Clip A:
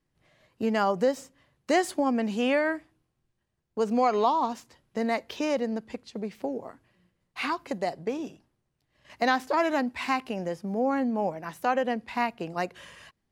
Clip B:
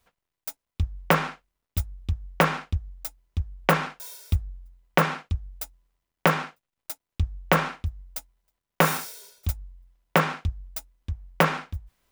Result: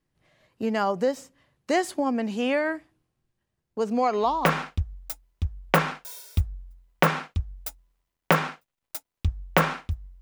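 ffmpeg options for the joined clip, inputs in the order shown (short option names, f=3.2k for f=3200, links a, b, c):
-filter_complex "[0:a]apad=whole_dur=10.21,atrim=end=10.21,atrim=end=4.62,asetpts=PTS-STARTPTS[a];[1:a]atrim=start=2.15:end=8.16,asetpts=PTS-STARTPTS[b];[a][b]acrossfade=d=0.42:c1=qsin:c2=qsin"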